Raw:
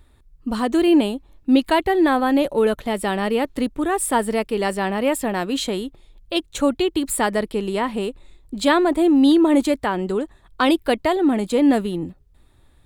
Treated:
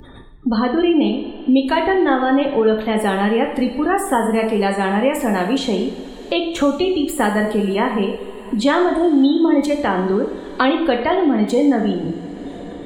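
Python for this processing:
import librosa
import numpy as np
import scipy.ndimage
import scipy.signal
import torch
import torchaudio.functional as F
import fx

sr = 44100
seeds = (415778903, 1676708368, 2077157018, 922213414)

y = fx.spec_gate(x, sr, threshold_db=-30, keep='strong')
y = fx.dynamic_eq(y, sr, hz=9000.0, q=2.7, threshold_db=-47.0, ratio=4.0, max_db=-6)
y = fx.rev_double_slope(y, sr, seeds[0], early_s=0.66, late_s=3.2, knee_db=-21, drr_db=1.5)
y = fx.band_squash(y, sr, depth_pct=70)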